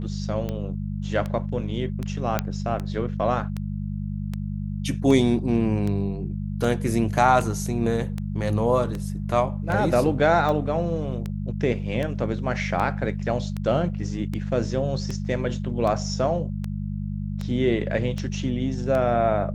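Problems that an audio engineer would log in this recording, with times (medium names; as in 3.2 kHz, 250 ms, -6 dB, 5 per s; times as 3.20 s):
hum 50 Hz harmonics 4 -29 dBFS
tick 78 rpm -17 dBFS
2.39 s: pop -8 dBFS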